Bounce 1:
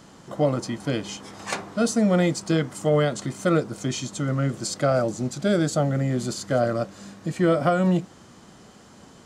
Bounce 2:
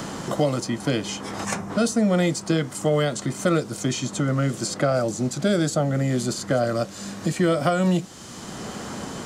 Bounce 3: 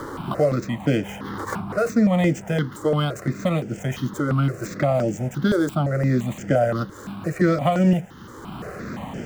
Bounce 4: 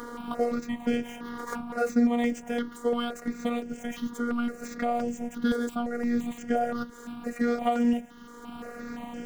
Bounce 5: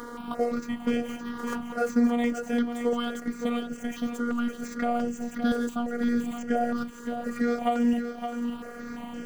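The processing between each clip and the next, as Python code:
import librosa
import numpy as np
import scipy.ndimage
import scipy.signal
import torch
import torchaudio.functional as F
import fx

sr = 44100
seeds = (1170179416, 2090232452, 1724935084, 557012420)

y1 = fx.spec_box(x, sr, start_s=1.45, length_s=0.25, low_hz=250.0, high_hz=5100.0, gain_db=-9)
y1 = fx.high_shelf(y1, sr, hz=4600.0, db=5.5)
y1 = fx.band_squash(y1, sr, depth_pct=70)
y2 = scipy.signal.medfilt(y1, 9)
y2 = fx.peak_eq(y2, sr, hz=11000.0, db=-4.0, octaves=1.8)
y2 = fx.phaser_held(y2, sr, hz=5.8, low_hz=700.0, high_hz=3900.0)
y2 = F.gain(torch.from_numpy(y2), 4.5).numpy()
y3 = fx.robotise(y2, sr, hz=239.0)
y3 = F.gain(torch.from_numpy(y3), -4.0).numpy()
y4 = y3 + 10.0 ** (-8.0 / 20.0) * np.pad(y3, (int(567 * sr / 1000.0), 0))[:len(y3)]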